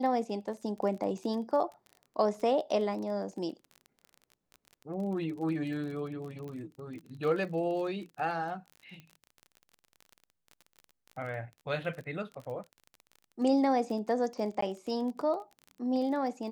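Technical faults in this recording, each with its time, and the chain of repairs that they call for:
crackle 26/s -39 dBFS
6.48 pop -32 dBFS
14.61–14.62 gap 14 ms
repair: de-click; interpolate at 14.61, 14 ms

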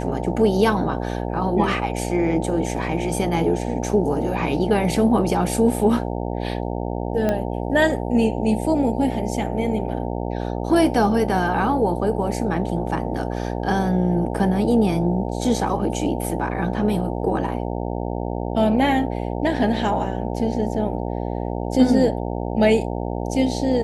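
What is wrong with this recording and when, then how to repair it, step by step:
buzz 60 Hz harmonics 15 -26 dBFS
7.29 pop -10 dBFS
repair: de-click; de-hum 60 Hz, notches 15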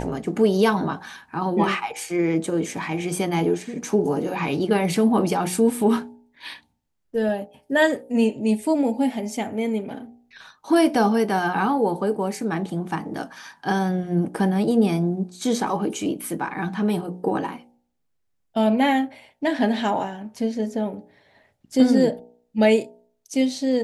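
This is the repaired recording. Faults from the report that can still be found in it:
none

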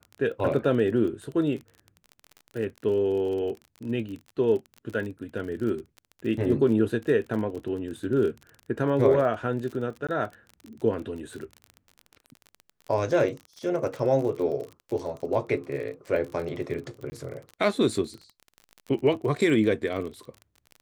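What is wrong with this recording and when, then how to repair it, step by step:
crackle 35/s -34 dBFS
10.07–10.09 gap 16 ms
17.1–17.12 gap 20 ms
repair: de-click; interpolate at 10.07, 16 ms; interpolate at 17.1, 20 ms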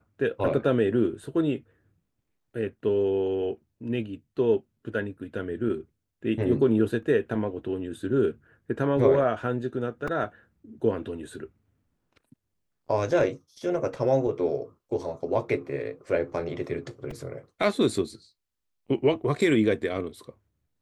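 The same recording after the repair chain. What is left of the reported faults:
none

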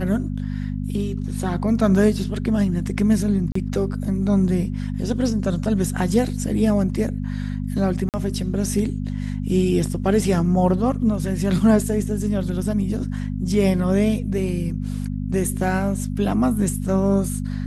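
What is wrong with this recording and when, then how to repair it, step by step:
hum 50 Hz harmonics 5 -26 dBFS
3.52–3.55 gap 34 ms
8.09–8.14 gap 48 ms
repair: de-hum 50 Hz, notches 5; interpolate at 3.52, 34 ms; interpolate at 8.09, 48 ms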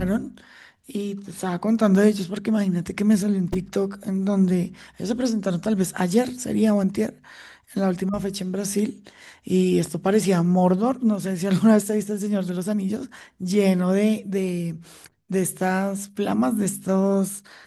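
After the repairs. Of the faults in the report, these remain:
none

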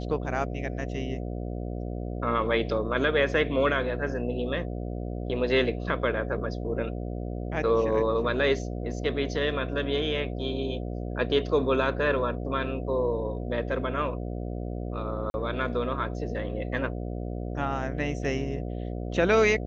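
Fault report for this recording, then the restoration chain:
buzz 60 Hz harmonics 12 -33 dBFS
15.3–15.34 gap 41 ms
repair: de-hum 60 Hz, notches 12; interpolate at 15.3, 41 ms

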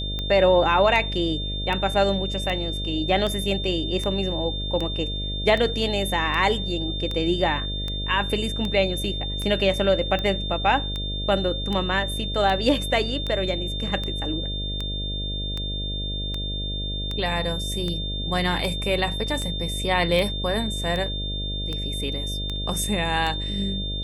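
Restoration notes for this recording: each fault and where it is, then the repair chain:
buzz 50 Hz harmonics 13 -30 dBFS
tick 78 rpm -16 dBFS
tone 3600 Hz -30 dBFS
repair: de-click; de-hum 50 Hz, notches 13; notch 3600 Hz, Q 30

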